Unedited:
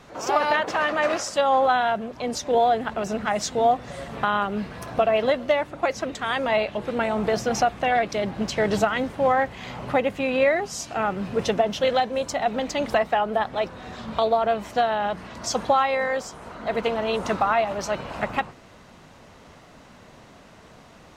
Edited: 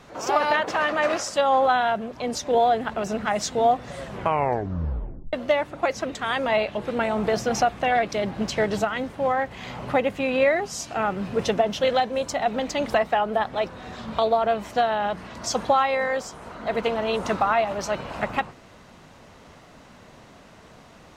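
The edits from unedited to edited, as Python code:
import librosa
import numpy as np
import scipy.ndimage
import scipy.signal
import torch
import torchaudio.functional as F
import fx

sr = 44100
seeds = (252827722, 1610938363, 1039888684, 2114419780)

y = fx.edit(x, sr, fx.tape_stop(start_s=4.0, length_s=1.33),
    fx.clip_gain(start_s=8.65, length_s=0.86, db=-3.0), tone=tone)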